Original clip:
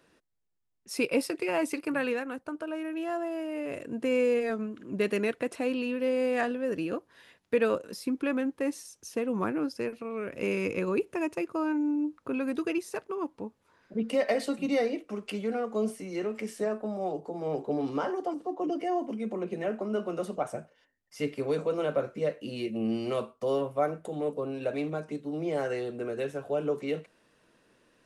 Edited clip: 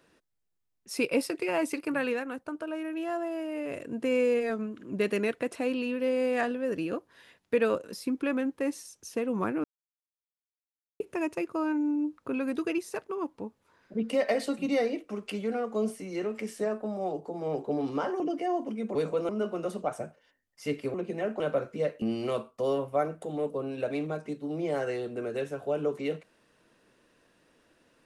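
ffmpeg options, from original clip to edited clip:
ffmpeg -i in.wav -filter_complex "[0:a]asplit=9[link_01][link_02][link_03][link_04][link_05][link_06][link_07][link_08][link_09];[link_01]atrim=end=9.64,asetpts=PTS-STARTPTS,afade=type=out:start_time=9.636:duration=0.004:curve=hsin[link_10];[link_02]atrim=start=9.64:end=11,asetpts=PTS-STARTPTS,volume=0[link_11];[link_03]atrim=start=11:end=18.202,asetpts=PTS-STARTPTS,afade=type=in:duration=0.004:curve=hsin[link_12];[link_04]atrim=start=18.618:end=19.372[link_13];[link_05]atrim=start=21.478:end=21.822[link_14];[link_06]atrim=start=19.828:end=21.482[link_15];[link_07]atrim=start=19.368:end=19.832[link_16];[link_08]atrim=start=21.818:end=22.442[link_17];[link_09]atrim=start=22.848[link_18];[link_10][link_11][link_12]concat=n=3:v=0:a=1[link_19];[link_19][link_13]acrossfade=duration=0.004:curve1=hsin:curve2=hsin[link_20];[link_20][link_14]acrossfade=duration=0.004:curve1=hsin:curve2=hsin[link_21];[link_21][link_15]acrossfade=duration=0.004:curve1=hsin:curve2=hsin[link_22];[link_22][link_16]acrossfade=duration=0.004:curve1=hsin:curve2=hsin[link_23];[link_23][link_17]acrossfade=duration=0.004:curve1=hsin:curve2=hsin[link_24];[link_24][link_18]acrossfade=duration=0.004:curve1=hsin:curve2=hsin" out.wav

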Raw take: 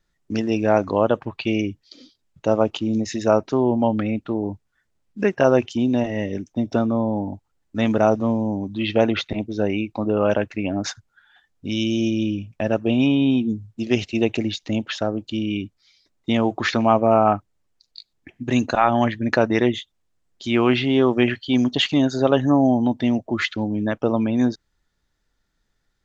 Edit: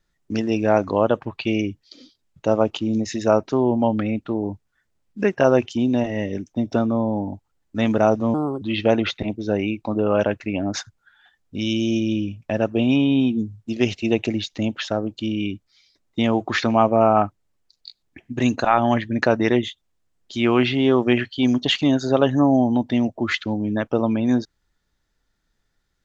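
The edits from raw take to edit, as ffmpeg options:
ffmpeg -i in.wav -filter_complex "[0:a]asplit=3[link_01][link_02][link_03];[link_01]atrim=end=8.344[link_04];[link_02]atrim=start=8.34:end=8.72,asetpts=PTS-STARTPTS,asetrate=60858,aresample=44100,atrim=end_sample=12143,asetpts=PTS-STARTPTS[link_05];[link_03]atrim=start=8.716[link_06];[link_04][link_05]acrossfade=duration=0.004:curve1=hsin:curve2=hsin[link_07];[link_07][link_06]acrossfade=duration=0.004:curve1=hsin:curve2=hsin" out.wav

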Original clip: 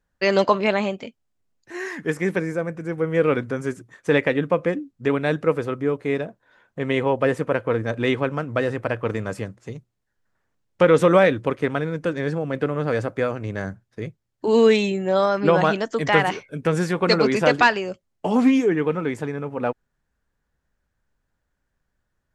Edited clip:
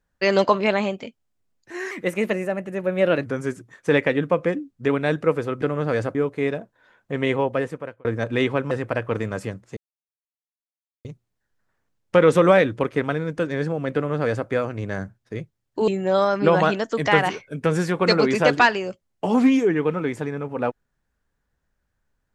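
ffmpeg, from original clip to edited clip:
ffmpeg -i in.wav -filter_complex "[0:a]asplit=9[link_01][link_02][link_03][link_04][link_05][link_06][link_07][link_08][link_09];[link_01]atrim=end=1.914[link_10];[link_02]atrim=start=1.91:end=3.46,asetpts=PTS-STARTPTS,asetrate=50715,aresample=44100,atrim=end_sample=59439,asetpts=PTS-STARTPTS[link_11];[link_03]atrim=start=3.456:end=5.822[link_12];[link_04]atrim=start=12.608:end=13.142[link_13];[link_05]atrim=start=5.818:end=7.72,asetpts=PTS-STARTPTS,afade=type=out:start_time=1.182:duration=0.72[link_14];[link_06]atrim=start=7.72:end=8.382,asetpts=PTS-STARTPTS,afade=type=in:duration=0.004:curve=hsin[link_15];[link_07]atrim=start=8.648:end=9.71,asetpts=PTS-STARTPTS,afade=type=out:start_time=1.058:duration=0.004:curve=hsin,apad=pad_dur=1.28[link_16];[link_08]atrim=start=9.71:end=14.542,asetpts=PTS-STARTPTS,afade=type=in:duration=0.004:curve=hsin[link_17];[link_09]atrim=start=14.888[link_18];[link_10][link_11]acrossfade=duration=0.004:curve1=hsin:curve2=hsin[link_19];[link_19][link_12]acrossfade=duration=0.004:curve1=hsin:curve2=hsin[link_20];[link_20][link_13]acrossfade=duration=0.004:curve1=hsin:curve2=hsin[link_21];[link_14][link_15]concat=n=2:v=0:a=1[link_22];[link_21][link_22]acrossfade=duration=0.004:curve1=hsin:curve2=hsin[link_23];[link_16][link_17]concat=n=2:v=0:a=1[link_24];[link_23][link_24]acrossfade=duration=0.004:curve1=hsin:curve2=hsin[link_25];[link_25][link_18]acrossfade=duration=0.004:curve1=hsin:curve2=hsin" out.wav

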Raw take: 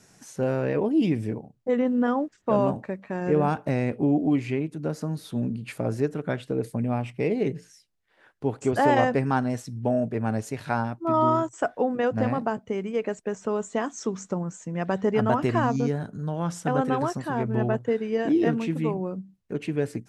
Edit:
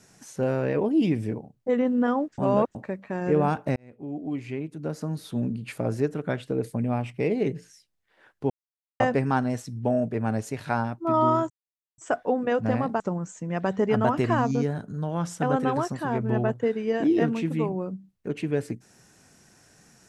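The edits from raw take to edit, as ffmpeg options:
ffmpeg -i in.wav -filter_complex "[0:a]asplit=8[link_01][link_02][link_03][link_04][link_05][link_06][link_07][link_08];[link_01]atrim=end=2.382[link_09];[link_02]atrim=start=2.378:end=2.752,asetpts=PTS-STARTPTS,areverse[link_10];[link_03]atrim=start=2.748:end=3.76,asetpts=PTS-STARTPTS,afade=type=out:start_time=1.008:duration=0.004:curve=hsin[link_11];[link_04]atrim=start=3.76:end=8.5,asetpts=PTS-STARTPTS,afade=type=in:duration=1.45,afade=type=out:start_time=4.736:duration=0.004:curve=hsin[link_12];[link_05]atrim=start=8.5:end=9,asetpts=PTS-STARTPTS,volume=0[link_13];[link_06]atrim=start=9:end=11.5,asetpts=PTS-STARTPTS,afade=type=in:duration=0.004:curve=hsin,afade=type=out:start_time=2.496:duration=0.004:curve=hsin,apad=pad_dur=0.48[link_14];[link_07]atrim=start=11.5:end=12.522,asetpts=PTS-STARTPTS,afade=type=in:duration=0.004:curve=hsin[link_15];[link_08]atrim=start=14.248[link_16];[link_09][link_10]acrossfade=duration=0.004:curve1=hsin:curve2=hsin[link_17];[link_11][link_12][link_13][link_14][link_15]concat=n=5:v=0:a=1[link_18];[link_17][link_18]acrossfade=duration=0.004:curve1=hsin:curve2=hsin[link_19];[link_19][link_16]acrossfade=duration=0.004:curve1=hsin:curve2=hsin" out.wav

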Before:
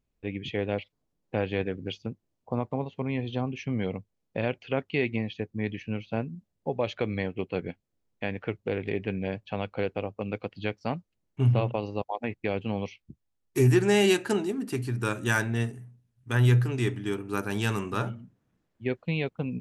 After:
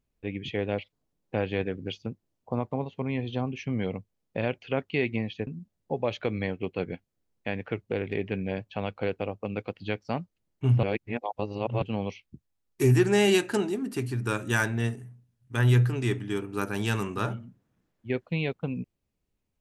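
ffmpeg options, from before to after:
ffmpeg -i in.wav -filter_complex "[0:a]asplit=4[link_01][link_02][link_03][link_04];[link_01]atrim=end=5.472[link_05];[link_02]atrim=start=6.228:end=11.592[link_06];[link_03]atrim=start=11.588:end=12.582,asetpts=PTS-STARTPTS,areverse[link_07];[link_04]atrim=start=12.578[link_08];[link_05][link_06]acrossfade=duration=0.004:curve1=hsin:curve2=hsin[link_09];[link_09][link_07]acrossfade=duration=0.004:curve1=hsin:curve2=hsin[link_10];[link_10][link_08]acrossfade=duration=0.004:curve1=hsin:curve2=hsin" out.wav

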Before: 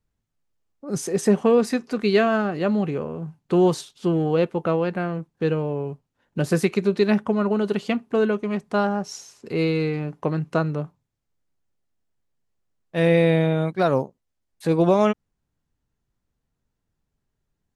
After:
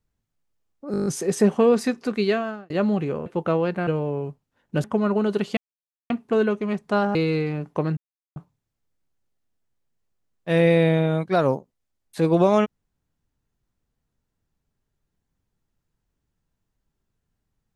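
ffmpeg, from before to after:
ffmpeg -i in.wav -filter_complex "[0:a]asplit=16[link_01][link_02][link_03][link_04][link_05][link_06][link_07][link_08][link_09][link_10][link_11][link_12][link_13][link_14][link_15][link_16];[link_01]atrim=end=0.942[link_17];[link_02]atrim=start=0.918:end=0.942[link_18];[link_03]atrim=start=0.918:end=0.942[link_19];[link_04]atrim=start=0.918:end=0.942[link_20];[link_05]atrim=start=0.918:end=0.942[link_21];[link_06]atrim=start=0.918:end=0.942[link_22];[link_07]atrim=start=0.918:end=0.942[link_23];[link_08]atrim=start=0.918:end=2.56,asetpts=PTS-STARTPTS,afade=type=out:start_time=1.042:duration=0.6[link_24];[link_09]atrim=start=2.56:end=3.122,asetpts=PTS-STARTPTS,afade=type=in:duration=0.004:curve=hsin[link_25];[link_10]atrim=start=4.448:end=5.062[link_26];[link_11]atrim=start=5.498:end=6.472[link_27];[link_12]atrim=start=7.188:end=7.92,asetpts=PTS-STARTPTS,afade=type=out:start_time=0.728:duration=0.004:curve=hsin,apad=pad_dur=0.53[link_28];[link_13]atrim=start=7.92:end=8.972,asetpts=PTS-STARTPTS,afade=type=in:duration=0.004:curve=hsin[link_29];[link_14]atrim=start=9.618:end=10.44,asetpts=PTS-STARTPTS,afade=type=out:start_time=0.818:duration=0.004:curve=hsin[link_30];[link_15]atrim=start=10.44:end=10.83,asetpts=PTS-STARTPTS,volume=0[link_31];[link_16]atrim=start=10.83,asetpts=PTS-STARTPTS,afade=type=in:duration=0.004:curve=hsin[link_32];[link_17][link_18]acrossfade=duration=0.004:curve1=hsin:curve2=hsin[link_33];[link_33][link_19]acrossfade=duration=0.004:curve1=hsin:curve2=hsin[link_34];[link_34][link_20]acrossfade=duration=0.004:curve1=hsin:curve2=hsin[link_35];[link_35][link_21]acrossfade=duration=0.004:curve1=hsin:curve2=hsin[link_36];[link_36][link_22]acrossfade=duration=0.004:curve1=hsin:curve2=hsin[link_37];[link_37][link_23]acrossfade=duration=0.004:curve1=hsin:curve2=hsin[link_38];[link_24][link_25]concat=n=2:v=0:a=1[link_39];[link_38][link_39]acrossfade=duration=0.004:curve1=hsin:curve2=hsin[link_40];[link_40][link_26]acrossfade=duration=0.004:curve1=hsin:curve2=hsin[link_41];[link_41][link_27]acrossfade=duration=0.004:curve1=hsin:curve2=hsin[link_42];[link_28][link_29]concat=n=2:v=0:a=1[link_43];[link_42][link_43]acrossfade=duration=0.004:curve1=hsin:curve2=hsin[link_44];[link_30][link_31][link_32]concat=n=3:v=0:a=1[link_45];[link_44][link_45]acrossfade=duration=0.004:curve1=hsin:curve2=hsin" out.wav

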